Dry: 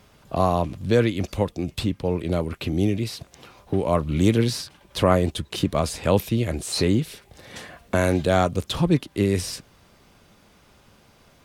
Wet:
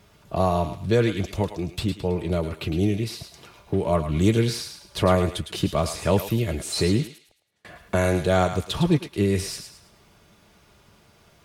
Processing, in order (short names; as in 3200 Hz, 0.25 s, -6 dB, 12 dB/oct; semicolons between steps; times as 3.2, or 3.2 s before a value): notch comb 260 Hz; 7.07–7.65 flipped gate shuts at -39 dBFS, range -35 dB; thinning echo 0.108 s, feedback 36%, high-pass 1000 Hz, level -7 dB